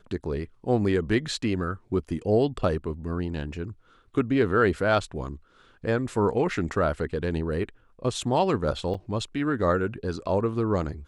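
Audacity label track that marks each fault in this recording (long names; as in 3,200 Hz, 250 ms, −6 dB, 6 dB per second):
8.940000	8.950000	drop-out 5.5 ms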